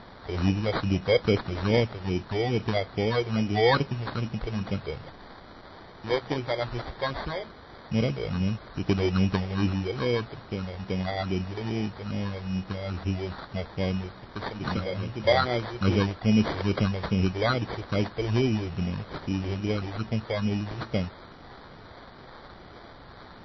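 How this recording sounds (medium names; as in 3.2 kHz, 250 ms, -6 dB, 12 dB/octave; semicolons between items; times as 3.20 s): a quantiser's noise floor 8-bit, dither triangular; phasing stages 4, 2.4 Hz, lowest notch 210–1500 Hz; aliases and images of a low sample rate 2.7 kHz, jitter 0%; MP3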